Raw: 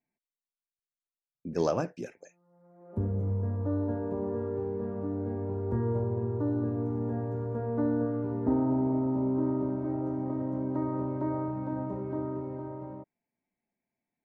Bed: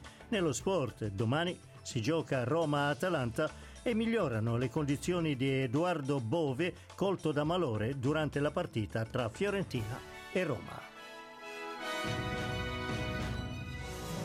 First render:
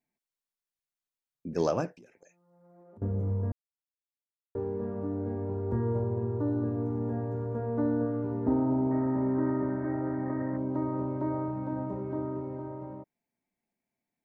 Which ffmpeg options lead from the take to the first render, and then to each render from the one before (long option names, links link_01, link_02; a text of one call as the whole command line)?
ffmpeg -i in.wav -filter_complex "[0:a]asettb=1/sr,asplit=3[link_01][link_02][link_03];[link_01]atrim=end=1.954[link_04];[link_02]atrim=start=1.95:end=3.02,asetpts=PTS-STARTPTS,afade=type=in:duration=0.004:curve=qsin,afade=type=out:start_time=1.066:duration=0.004:curve=qsin,acompressor=threshold=-52dB:ratio=6:attack=3.2:release=140:knee=1:detection=peak[link_05];[link_03]atrim=start=3.016[link_06];[link_04][link_05]acrossfade=duration=0.004:curve1=hsin:curve2=qsin[link_07];[link_07][link_06]acrossfade=duration=0.004:curve1=qsin:curve2=hsin,asettb=1/sr,asplit=3[link_08][link_09][link_10];[link_08]atrim=end=8.914[link_11];[link_09]atrim=start=8.91:end=10.57,asetpts=PTS-STARTPTS,afade=type=in:duration=0.004:curve=qsin,afade=type=out:start_time=1.656:duration=0.004:curve=qsin,lowpass=frequency=1800:width_type=q:width=11[link_12];[link_10]atrim=start=10.566[link_13];[link_11][link_12]acrossfade=duration=0.004:curve1=hsin:curve2=qsin[link_14];[link_14][link_13]acrossfade=duration=0.004:curve1=qsin:curve2=hsin,asplit=3[link_15][link_16][link_17];[link_15]atrim=end=3.52,asetpts=PTS-STARTPTS,afade=type=out:start_time=3.516:duration=0.004:curve=hsin[link_18];[link_16]atrim=start=3.52:end=4.55,asetpts=PTS-STARTPTS,volume=0[link_19];[link_17]atrim=start=4.55,asetpts=PTS-STARTPTS,afade=type=in:duration=0.004:curve=hsin[link_20];[link_18][link_19][link_20]concat=n=3:v=0:a=1" out.wav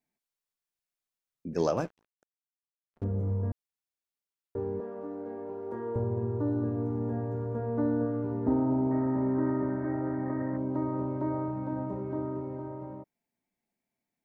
ffmpeg -i in.wav -filter_complex "[0:a]asettb=1/sr,asplit=3[link_01][link_02][link_03];[link_01]atrim=end=1.774[link_04];[link_02]atrim=start=1.77:end=3.04,asetpts=PTS-STARTPTS,afade=type=in:duration=0.004:curve=qsin,afade=type=out:start_time=1.266:duration=0.004:curve=qsin,aeval=exprs='sgn(val(0))*max(abs(val(0))-0.00422,0)':channel_layout=same[link_05];[link_03]atrim=start=3.036[link_06];[link_04][link_05]acrossfade=duration=0.004:curve1=hsin:curve2=qsin[link_07];[link_07][link_06]acrossfade=duration=0.004:curve1=qsin:curve2=hsin,asettb=1/sr,asplit=3[link_08][link_09][link_10];[link_08]atrim=end=4.804[link_11];[link_09]atrim=start=4.8:end=5.96,asetpts=PTS-STARTPTS,afade=type=in:duration=0.004:curve=qsin,afade=type=out:start_time=1.156:duration=0.004:curve=qsin,highpass=380[link_12];[link_10]atrim=start=5.956[link_13];[link_11][link_12]acrossfade=duration=0.004:curve1=hsin:curve2=qsin[link_14];[link_14][link_13]acrossfade=duration=0.004:curve1=qsin:curve2=hsin" out.wav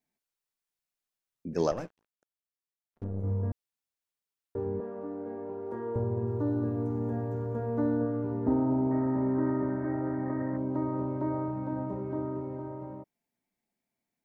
ffmpeg -i in.wav -filter_complex "[0:a]asettb=1/sr,asplit=3[link_01][link_02][link_03];[link_01]atrim=end=1.714[link_04];[link_02]atrim=start=1.71:end=3.24,asetpts=PTS-STARTPTS,afade=type=in:duration=0.004:curve=qsin,afade=type=out:start_time=1.526:duration=0.004:curve=qsin,aeval=exprs='(tanh(10*val(0)+0.8)-tanh(0.8))/10':channel_layout=same[link_05];[link_03]atrim=start=3.236[link_06];[link_04][link_05]acrossfade=duration=0.004:curve1=hsin:curve2=qsin[link_07];[link_07][link_06]acrossfade=duration=0.004:curve1=qsin:curve2=hsin,asettb=1/sr,asplit=3[link_08][link_09][link_10];[link_08]atrim=end=4.654[link_11];[link_09]atrim=start=4.65:end=5.66,asetpts=PTS-STARTPTS,afade=type=in:duration=0.004:curve=qsin,afade=type=out:start_time=1.006:duration=0.004:curve=qsin,bass=frequency=250:gain=3,treble=frequency=4000:gain=-7[link_12];[link_10]atrim=start=5.656[link_13];[link_11][link_12]acrossfade=duration=0.004:curve1=hsin:curve2=qsin[link_14];[link_14][link_13]acrossfade=duration=0.004:curve1=qsin:curve2=hsin,asettb=1/sr,asplit=3[link_15][link_16][link_17];[link_15]atrim=end=6.274[link_18];[link_16]atrim=start=6.27:end=7.97,asetpts=PTS-STARTPTS,afade=type=in:duration=0.004:curve=qsin,afade=type=out:start_time=1.696:duration=0.004:curve=qsin,highshelf=frequency=4500:gain=9.5[link_19];[link_17]atrim=start=7.966[link_20];[link_18][link_19]acrossfade=duration=0.004:curve1=hsin:curve2=qsin[link_21];[link_21][link_20]acrossfade=duration=0.004:curve1=qsin:curve2=hsin" out.wav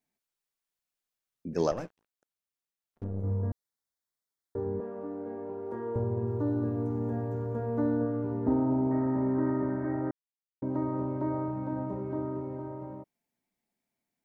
ffmpeg -i in.wav -filter_complex "[0:a]asettb=1/sr,asplit=3[link_01][link_02][link_03];[link_01]atrim=end=3.214[link_04];[link_02]atrim=start=3.21:end=4.8,asetpts=PTS-STARTPTS,afade=type=in:duration=0.004:curve=qsin,afade=type=out:start_time=1.586:duration=0.004:curve=qsin,asuperstop=centerf=2700:order=4:qfactor=2.3[link_05];[link_03]atrim=start=4.796[link_06];[link_04][link_05]acrossfade=duration=0.004:curve1=hsin:curve2=qsin[link_07];[link_07][link_06]acrossfade=duration=0.004:curve1=qsin:curve2=hsin,asplit=3[link_08][link_09][link_10];[link_08]atrim=end=10.11,asetpts=PTS-STARTPTS,afade=type=out:start_time=10.106:duration=0.004:curve=hsin[link_11];[link_09]atrim=start=10.11:end=10.62,asetpts=PTS-STARTPTS,volume=0[link_12];[link_10]atrim=start=10.62,asetpts=PTS-STARTPTS,afade=type=in:duration=0.004:curve=hsin[link_13];[link_11][link_12][link_13]concat=n=3:v=0:a=1" out.wav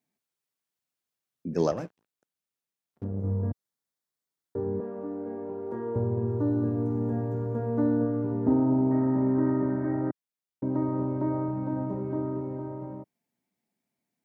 ffmpeg -i in.wav -af "highpass=120,lowshelf=frequency=280:gain=7.5" out.wav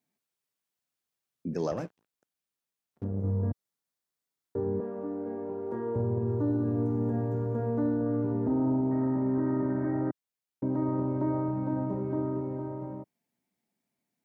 ffmpeg -i in.wav -af "alimiter=limit=-21dB:level=0:latency=1:release=22" out.wav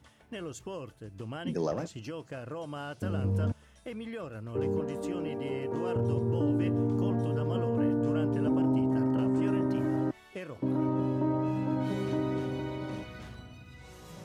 ffmpeg -i in.wav -i bed.wav -filter_complex "[1:a]volume=-8dB[link_01];[0:a][link_01]amix=inputs=2:normalize=0" out.wav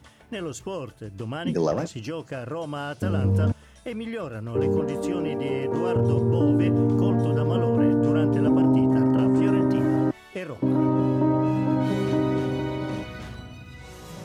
ffmpeg -i in.wav -af "volume=7.5dB" out.wav